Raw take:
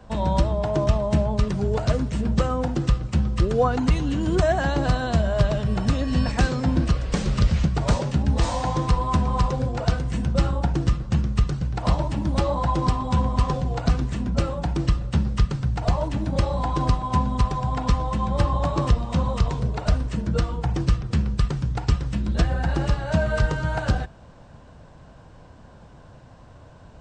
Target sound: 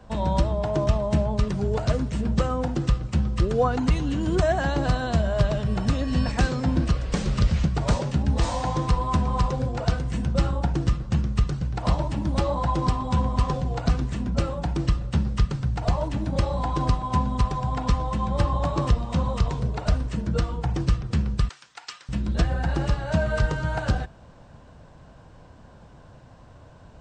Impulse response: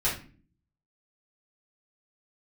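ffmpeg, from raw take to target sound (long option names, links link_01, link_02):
-filter_complex "[0:a]asettb=1/sr,asplit=3[link_01][link_02][link_03];[link_01]atrim=end=21.494[link_04];[link_02]atrim=start=21.49:end=22.09,asetpts=PTS-STARTPTS,afade=type=in:duration=0.004:curve=qsin,afade=type=out:start_time=0.596:duration=0.004:curve=qsin,highpass=1500[link_05];[link_03]atrim=start=22.086[link_06];[link_04][link_05]acrossfade=duration=0.004:curve1=hsin:curve2=qsin[link_07];[link_07][link_06]acrossfade=duration=0.004:curve1=qsin:curve2=hsin,volume=-1.5dB"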